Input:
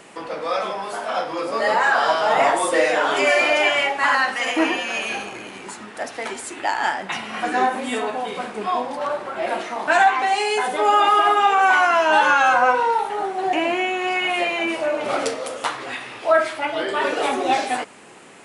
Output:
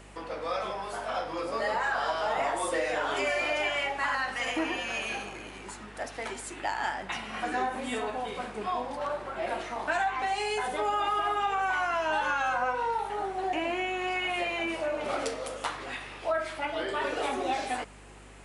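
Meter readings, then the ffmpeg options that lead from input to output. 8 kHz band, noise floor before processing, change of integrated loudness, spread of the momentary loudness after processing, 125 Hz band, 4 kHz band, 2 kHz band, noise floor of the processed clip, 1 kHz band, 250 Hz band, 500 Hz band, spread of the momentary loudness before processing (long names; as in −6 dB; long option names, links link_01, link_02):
−9.0 dB, −39 dBFS, −11.0 dB, 9 LU, can't be measured, −10.0 dB, −11.0 dB, −45 dBFS, −11.0 dB, −9.5 dB, −10.0 dB, 13 LU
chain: -af "acompressor=threshold=-19dB:ratio=3,aeval=exprs='val(0)+0.00631*(sin(2*PI*50*n/s)+sin(2*PI*2*50*n/s)/2+sin(2*PI*3*50*n/s)/3+sin(2*PI*4*50*n/s)/4+sin(2*PI*5*50*n/s)/5)':channel_layout=same,volume=-7.5dB"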